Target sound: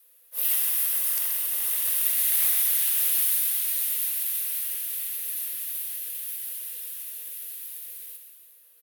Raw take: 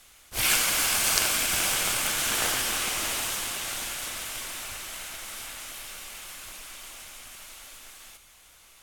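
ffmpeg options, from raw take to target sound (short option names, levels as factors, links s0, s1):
-filter_complex "[0:a]acrossover=split=500|1300[s0][s1][s2];[s2]dynaudnorm=f=130:g=9:m=3.35[s3];[s0][s1][s3]amix=inputs=3:normalize=0,asplit=2[s4][s5];[s5]adelay=128.3,volume=0.447,highshelf=f=4000:g=-2.89[s6];[s4][s6]amix=inputs=2:normalize=0,aexciter=amount=13.4:drive=1.4:freq=9600,afreqshift=470,volume=0.15"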